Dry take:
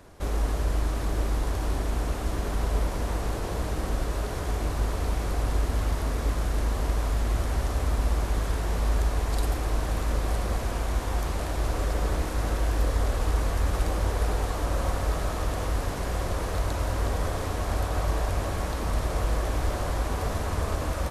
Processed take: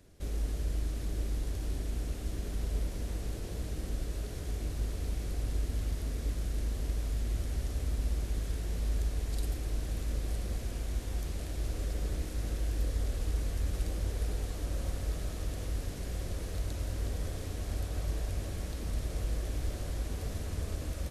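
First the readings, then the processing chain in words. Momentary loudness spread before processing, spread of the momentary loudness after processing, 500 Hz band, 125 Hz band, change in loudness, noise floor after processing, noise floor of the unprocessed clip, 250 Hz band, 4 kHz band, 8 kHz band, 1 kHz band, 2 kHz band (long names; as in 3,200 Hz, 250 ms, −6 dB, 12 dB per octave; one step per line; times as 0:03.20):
3 LU, 4 LU, −12.0 dB, −6.5 dB, −7.5 dB, −40 dBFS, −31 dBFS, −8.0 dB, −8.0 dB, −7.0 dB, −18.5 dB, −13.0 dB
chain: parametric band 1,000 Hz −14.5 dB 1.5 octaves
level −6.5 dB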